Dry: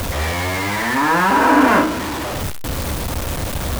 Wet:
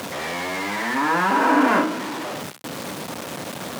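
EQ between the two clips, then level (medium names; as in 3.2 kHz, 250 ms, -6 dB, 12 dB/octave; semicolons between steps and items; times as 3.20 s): high-pass 160 Hz 24 dB/octave; treble shelf 11 kHz -8.5 dB; -4.5 dB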